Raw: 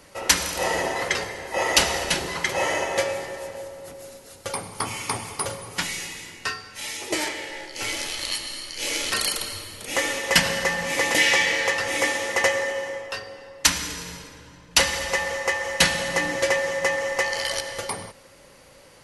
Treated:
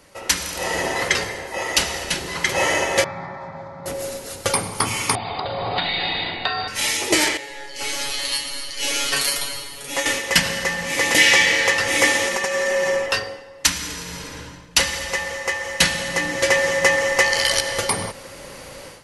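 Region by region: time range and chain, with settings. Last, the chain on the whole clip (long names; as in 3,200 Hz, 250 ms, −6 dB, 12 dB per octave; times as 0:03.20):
0:03.04–0:03.86: loudspeaker in its box 110–3,200 Hz, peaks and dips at 160 Hz +9 dB, 320 Hz −7 dB, 550 Hz +4 dB, 1,700 Hz −8 dB + phaser with its sweep stopped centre 1,200 Hz, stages 4
0:05.15–0:06.68: linear-phase brick-wall low-pass 4,900 Hz + downward compressor 5 to 1, threshold −35 dBFS + hollow resonant body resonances 720/3,700 Hz, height 16 dB, ringing for 25 ms
0:07.37–0:10.06: parametric band 91 Hz −6.5 dB 0.96 octaves + tuned comb filter 140 Hz, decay 0.19 s, mix 100% + one half of a high-frequency compander encoder only
0:12.27–0:13.06: downward compressor 16 to 1, threshold −27 dBFS + comb filter 5.2 ms, depth 84%
whole clip: dynamic equaliser 700 Hz, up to −4 dB, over −34 dBFS, Q 0.74; automatic gain control gain up to 14 dB; level −1 dB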